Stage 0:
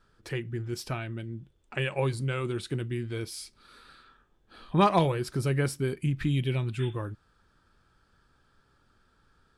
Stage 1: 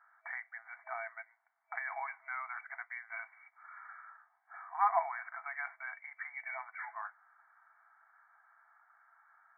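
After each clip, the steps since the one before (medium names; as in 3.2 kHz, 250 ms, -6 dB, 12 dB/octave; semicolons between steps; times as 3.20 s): FFT band-pass 650–2300 Hz; in parallel at -2 dB: compressor with a negative ratio -46 dBFS, ratio -1; on the sum: trim -4 dB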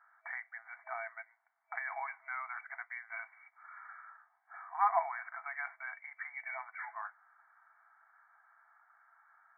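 no audible change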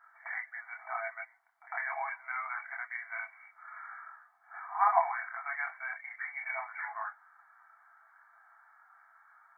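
chorus voices 4, 0.35 Hz, delay 26 ms, depth 2.7 ms; reverse echo 103 ms -19 dB; trim +7.5 dB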